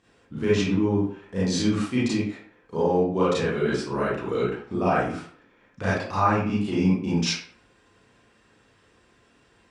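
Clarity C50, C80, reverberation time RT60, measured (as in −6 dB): −0.5 dB, 5.5 dB, 0.50 s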